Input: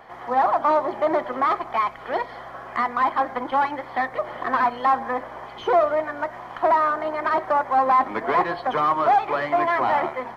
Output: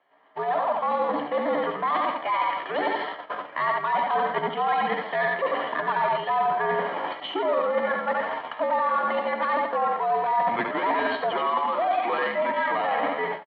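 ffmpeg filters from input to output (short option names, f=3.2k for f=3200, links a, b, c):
-filter_complex "[0:a]highpass=f=280:t=q:w=0.5412,highpass=f=280:t=q:w=1.307,lowpass=f=3.6k:t=q:w=0.5176,lowpass=f=3.6k:t=q:w=0.7071,lowpass=f=3.6k:t=q:w=1.932,afreqshift=-79,crystalizer=i=5:c=0,asplit=2[a][b];[b]aecho=0:1:62|124|186|248|310:0.596|0.232|0.0906|0.0353|0.0138[c];[a][c]amix=inputs=2:normalize=0,atempo=0.77,dynaudnorm=f=240:g=21:m=9dB,bandreject=f=1.5k:w=17,agate=range=-24dB:threshold=-30dB:ratio=16:detection=peak,areverse,acompressor=threshold=-22dB:ratio=6,areverse"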